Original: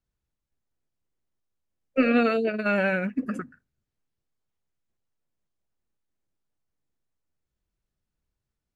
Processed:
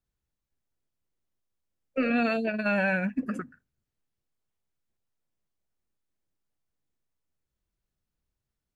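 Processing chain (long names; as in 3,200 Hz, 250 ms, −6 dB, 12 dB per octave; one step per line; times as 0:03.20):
0:02.10–0:03.23: comb filter 1.2 ms, depth 56%
brickwall limiter −15.5 dBFS, peak gain reduction 5.5 dB
level −1.5 dB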